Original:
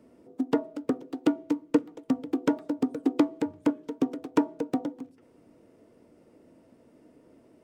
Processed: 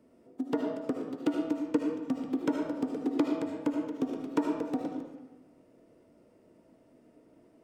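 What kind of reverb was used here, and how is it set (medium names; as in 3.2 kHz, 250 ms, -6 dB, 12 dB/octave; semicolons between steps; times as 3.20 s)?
algorithmic reverb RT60 1.1 s, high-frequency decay 0.7×, pre-delay 35 ms, DRR 1 dB; trim -5.5 dB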